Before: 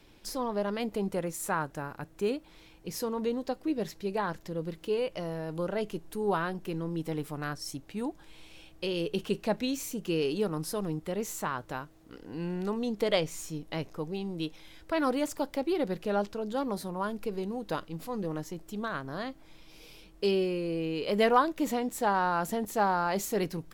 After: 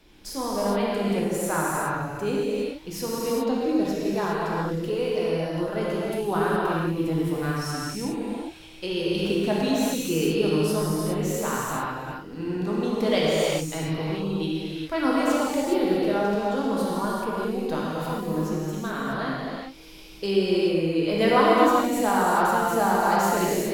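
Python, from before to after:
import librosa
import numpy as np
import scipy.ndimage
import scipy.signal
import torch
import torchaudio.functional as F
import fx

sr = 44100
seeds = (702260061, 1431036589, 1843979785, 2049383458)

y = fx.rev_gated(x, sr, seeds[0], gate_ms=440, shape='flat', drr_db=-6.5)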